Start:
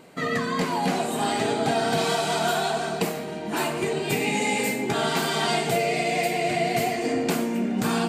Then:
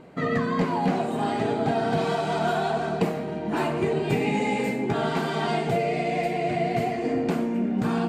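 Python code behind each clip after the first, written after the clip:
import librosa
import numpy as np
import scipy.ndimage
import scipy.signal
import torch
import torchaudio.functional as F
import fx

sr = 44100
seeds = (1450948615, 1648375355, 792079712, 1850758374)

y = fx.lowpass(x, sr, hz=1400.0, slope=6)
y = fx.low_shelf(y, sr, hz=120.0, db=7.5)
y = fx.rider(y, sr, range_db=10, speed_s=2.0)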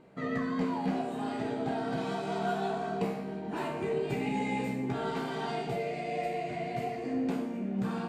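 y = fx.comb_fb(x, sr, f0_hz=65.0, decay_s=0.7, harmonics='all', damping=0.0, mix_pct=80)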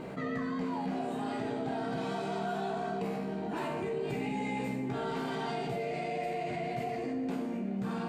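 y = x + 10.0 ** (-20.5 / 20.0) * np.pad(x, (int(995 * sr / 1000.0), 0))[:len(x)]
y = fx.env_flatten(y, sr, amount_pct=70)
y = y * 10.0 ** (-5.5 / 20.0)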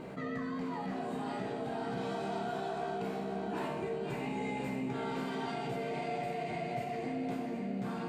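y = fx.echo_feedback(x, sr, ms=539, feedback_pct=54, wet_db=-7)
y = y * 10.0 ** (-3.0 / 20.0)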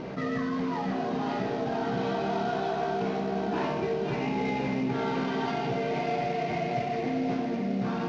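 y = fx.cvsd(x, sr, bps=32000)
y = fx.air_absorb(y, sr, metres=110.0)
y = y * 10.0 ** (8.0 / 20.0)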